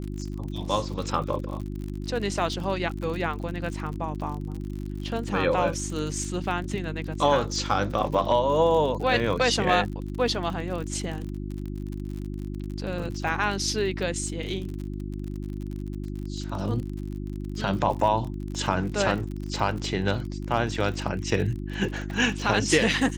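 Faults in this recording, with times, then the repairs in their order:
crackle 49 per s -33 dBFS
hum 50 Hz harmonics 7 -33 dBFS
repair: de-click; de-hum 50 Hz, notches 7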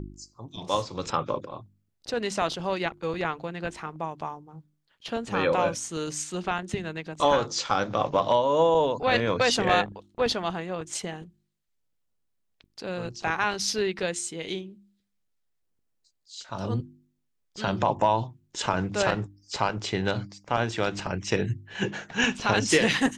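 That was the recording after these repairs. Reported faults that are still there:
nothing left

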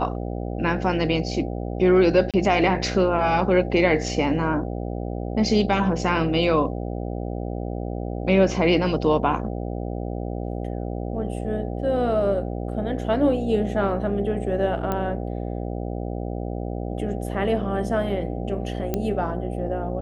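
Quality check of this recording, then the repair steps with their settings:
buzz 60 Hz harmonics 13 -29 dBFS
2.31–2.34 s: dropout 27 ms
14.92 s: pop -13 dBFS
18.94 s: pop -11 dBFS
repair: de-click; de-hum 60 Hz, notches 13; interpolate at 2.31 s, 27 ms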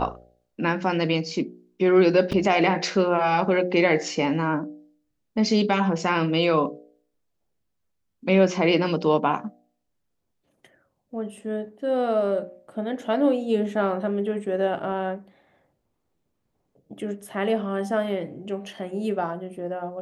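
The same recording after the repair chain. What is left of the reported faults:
nothing left

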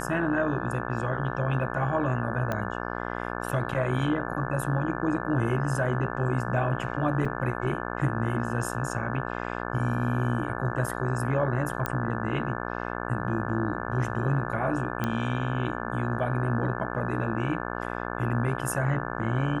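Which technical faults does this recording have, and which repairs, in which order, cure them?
buzz 60 Hz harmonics 29 -33 dBFS
2.52 s: pop -16 dBFS
7.25 s: dropout 4.5 ms
11.86 s: pop -13 dBFS
15.04 s: pop -14 dBFS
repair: de-click; de-hum 60 Hz, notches 29; interpolate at 7.25 s, 4.5 ms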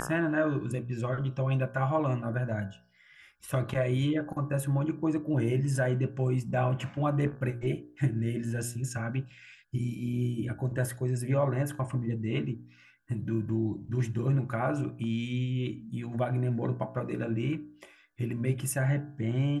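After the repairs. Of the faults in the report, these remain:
nothing left

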